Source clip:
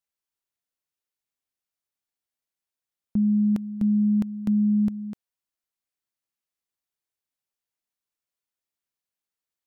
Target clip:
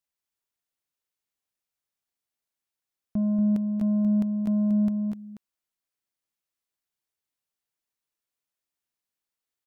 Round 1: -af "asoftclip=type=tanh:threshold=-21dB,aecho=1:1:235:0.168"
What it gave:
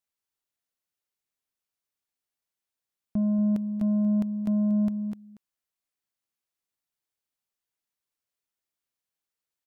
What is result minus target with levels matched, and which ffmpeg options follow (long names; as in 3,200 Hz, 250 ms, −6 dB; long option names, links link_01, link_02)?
echo-to-direct −7.5 dB
-af "asoftclip=type=tanh:threshold=-21dB,aecho=1:1:235:0.398"